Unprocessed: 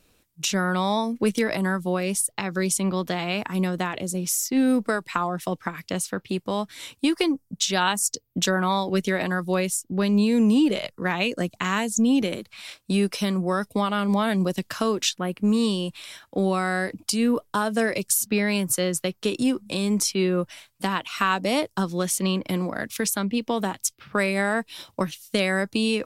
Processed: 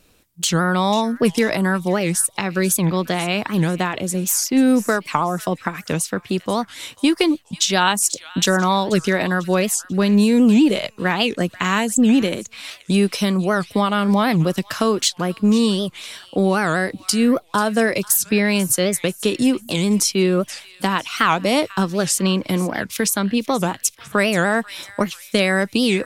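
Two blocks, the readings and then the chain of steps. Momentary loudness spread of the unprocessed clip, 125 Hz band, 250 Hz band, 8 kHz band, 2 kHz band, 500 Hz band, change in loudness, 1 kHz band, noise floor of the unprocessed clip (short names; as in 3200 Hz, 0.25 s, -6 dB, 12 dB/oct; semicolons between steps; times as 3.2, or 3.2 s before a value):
7 LU, +6.0 dB, +5.5 dB, +5.5 dB, +5.5 dB, +5.5 dB, +5.5 dB, +5.5 dB, -65 dBFS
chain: on a send: thin delay 0.49 s, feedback 38%, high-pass 1600 Hz, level -16 dB; on the sum: record warp 78 rpm, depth 250 cents; gain +5.5 dB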